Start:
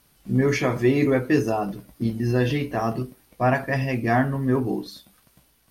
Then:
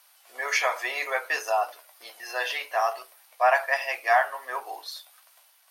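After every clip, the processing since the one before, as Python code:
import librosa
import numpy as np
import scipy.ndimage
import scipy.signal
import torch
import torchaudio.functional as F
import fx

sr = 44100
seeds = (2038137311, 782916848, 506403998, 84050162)

y = scipy.signal.sosfilt(scipy.signal.butter(6, 650.0, 'highpass', fs=sr, output='sos'), x)
y = y * librosa.db_to_amplitude(3.5)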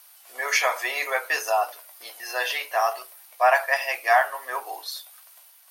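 y = fx.high_shelf(x, sr, hz=8300.0, db=9.0)
y = y * librosa.db_to_amplitude(2.0)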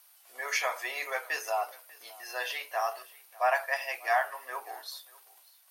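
y = x + 10.0 ** (-22.5 / 20.0) * np.pad(x, (int(593 * sr / 1000.0), 0))[:len(x)]
y = y * librosa.db_to_amplitude(-8.0)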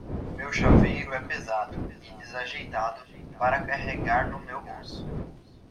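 y = fx.block_float(x, sr, bits=7)
y = fx.dmg_wind(y, sr, seeds[0], corner_hz=280.0, level_db=-32.0)
y = fx.air_absorb(y, sr, metres=130.0)
y = y * librosa.db_to_amplitude(2.5)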